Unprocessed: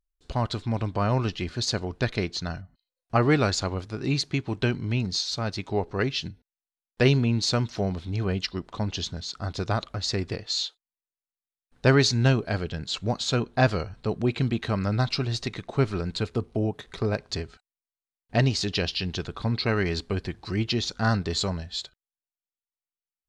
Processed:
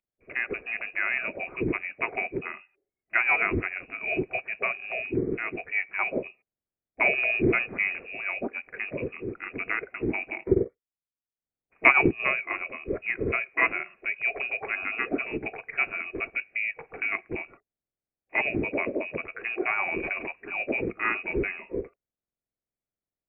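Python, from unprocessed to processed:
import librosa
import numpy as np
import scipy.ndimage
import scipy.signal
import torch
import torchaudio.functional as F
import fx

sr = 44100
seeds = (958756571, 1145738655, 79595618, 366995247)

y = fx.freq_compress(x, sr, knee_hz=1900.0, ratio=4.0)
y = scipy.signal.sosfilt(scipy.signal.butter(2, 250.0, 'highpass', fs=sr, output='sos'), y)
y = fx.leveller(y, sr, passes=1, at=(7.18, 8.06))
y = fx.transient(y, sr, attack_db=7, sustain_db=-12, at=(10.4, 12.2))
y = fx.freq_invert(y, sr, carrier_hz=2700)
y = fx.pre_swell(y, sr, db_per_s=27.0, at=(19.92, 20.39))
y = y * 10.0 ** (-1.0 / 20.0)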